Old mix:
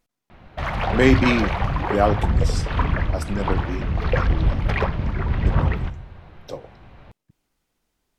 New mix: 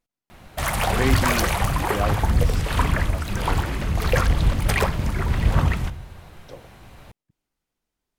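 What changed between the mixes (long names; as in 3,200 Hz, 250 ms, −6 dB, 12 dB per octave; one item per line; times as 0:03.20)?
speech −8.5 dB
background: remove high-frequency loss of the air 260 metres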